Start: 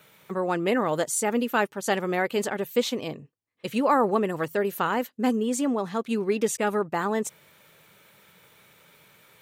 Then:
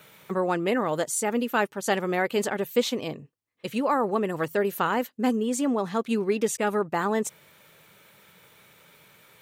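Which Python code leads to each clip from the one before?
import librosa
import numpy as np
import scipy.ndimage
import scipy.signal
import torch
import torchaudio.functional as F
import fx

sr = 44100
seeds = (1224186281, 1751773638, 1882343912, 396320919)

y = fx.rider(x, sr, range_db=4, speed_s=0.5)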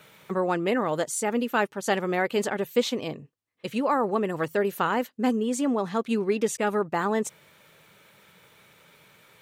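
y = fx.high_shelf(x, sr, hz=11000.0, db=-7.0)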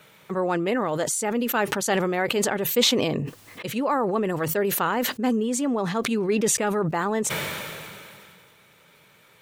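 y = fx.sustainer(x, sr, db_per_s=24.0)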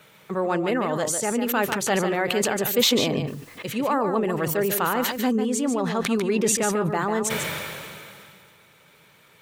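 y = x + 10.0 ** (-7.5 / 20.0) * np.pad(x, (int(146 * sr / 1000.0), 0))[:len(x)]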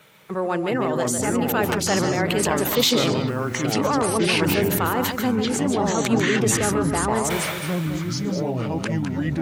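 y = fx.echo_pitch(x, sr, ms=285, semitones=-6, count=2, db_per_echo=-3.0)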